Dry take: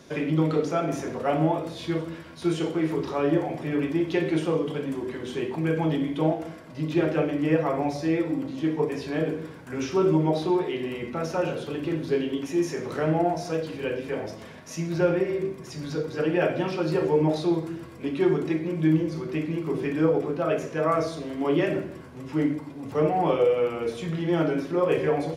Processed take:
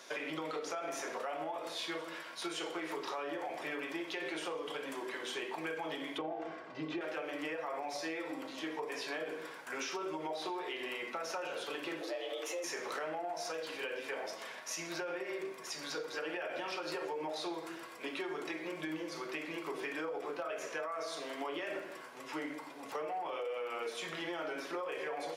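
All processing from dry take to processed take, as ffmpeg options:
-filter_complex "[0:a]asettb=1/sr,asplit=3[s0][s1][s2];[s0]atrim=end=6.184[s3];[s1]atrim=start=6.18:end=7.01,asetpts=PTS-STARTPTS,afade=t=in:d=0.004:c=qsin,afade=t=out:st=0.826:d=0.004:c=qsin,lowpass=7900,aemphasis=mode=reproduction:type=riaa,aecho=1:1:2.6:0.36,atrim=end_sample=36603[s4];[s2]atrim=start=7.006[s5];[s3][s4]acrossfade=d=0.004:c1=hsin:c2=qsin[s6];[s6][s5]acrossfade=d=0.004:c1=qsin:c2=hsin,asettb=1/sr,asplit=3[s7][s8][s9];[s7]atrim=end=12.014[s10];[s8]atrim=start=12.01:end=12.64,asetpts=PTS-STARTPTS,afade=t=in:d=0.004:c=qsin,afade=t=out:st=0.626:d=0.004:c=qsin,lowshelf=f=200:t=q:w=1.5:g=7,acompressor=threshold=0.0398:ratio=3:attack=3.2:release=140:knee=1:detection=peak,afreqshift=180[s11];[s9]atrim=start=12.636[s12];[s10][s11]acrossfade=d=0.004:c1=hsin:c2=qsin[s13];[s13][s12]acrossfade=d=0.004:c1=qsin:c2=hsin,highpass=740,alimiter=level_in=1.41:limit=0.0631:level=0:latency=1:release=84,volume=0.708,acompressor=threshold=0.0126:ratio=6,volume=1.26"

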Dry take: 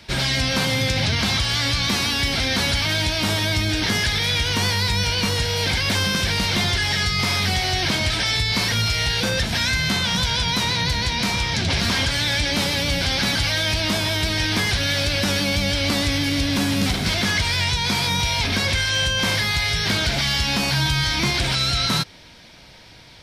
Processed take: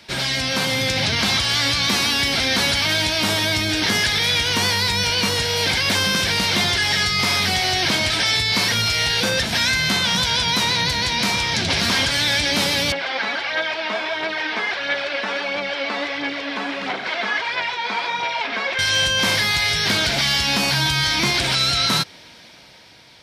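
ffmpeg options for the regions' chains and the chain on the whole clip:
-filter_complex "[0:a]asettb=1/sr,asplit=3[s0][s1][s2];[s0]atrim=end=12.924[s3];[s1]atrim=start=12.92:end=18.79,asetpts=PTS-STARTPTS,afade=t=in:d=0.004:c=qsin,afade=t=out:st=5.866:d=0.004:c=qsin,aphaser=in_gain=1:out_gain=1:delay=4.6:decay=0.47:speed=1.5:type=sinusoidal,highpass=500,lowpass=2100[s4];[s2]atrim=start=18.786[s5];[s3][s4]acrossfade=d=0.004:c1=hsin:c2=qsin[s6];[s6][s5]acrossfade=d=0.004:c1=qsin:c2=hsin,highpass=f=220:p=1,dynaudnorm=f=140:g=11:m=1.41"

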